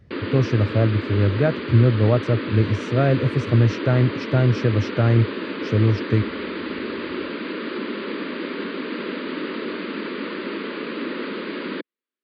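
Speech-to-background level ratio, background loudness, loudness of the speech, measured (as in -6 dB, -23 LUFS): 8.5 dB, -29.0 LUFS, -20.5 LUFS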